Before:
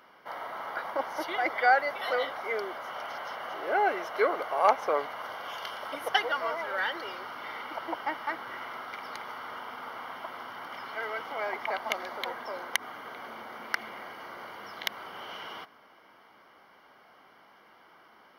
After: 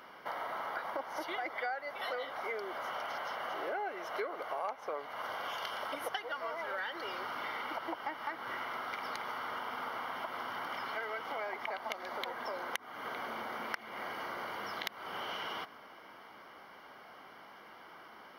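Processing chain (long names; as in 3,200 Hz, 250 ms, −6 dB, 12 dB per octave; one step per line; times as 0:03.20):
downward compressor 6 to 1, threshold −40 dBFS, peak gain reduction 22 dB
level +4 dB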